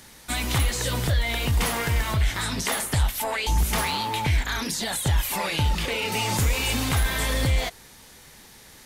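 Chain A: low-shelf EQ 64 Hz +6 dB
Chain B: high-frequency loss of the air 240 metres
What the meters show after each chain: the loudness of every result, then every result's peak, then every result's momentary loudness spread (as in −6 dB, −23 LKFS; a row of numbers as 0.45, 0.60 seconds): −23.5, −27.0 LKFS; −10.5, −14.5 dBFS; 4, 5 LU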